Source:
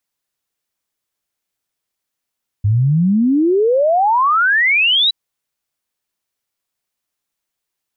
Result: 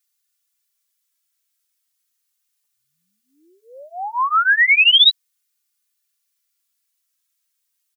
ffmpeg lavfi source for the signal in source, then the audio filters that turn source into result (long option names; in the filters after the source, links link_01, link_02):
-f lavfi -i "aevalsrc='0.299*clip(min(t,2.47-t)/0.01,0,1)*sin(2*PI*98*2.47/log(4000/98)*(exp(log(4000/98)*t/2.47)-1))':duration=2.47:sample_rate=44100"
-filter_complex "[0:a]highpass=frequency=1100:width=0.5412,highpass=frequency=1100:width=1.3066,highshelf=frequency=3500:gain=11,asplit=2[link_01][link_02];[link_02]adelay=2.9,afreqshift=-0.35[link_03];[link_01][link_03]amix=inputs=2:normalize=1"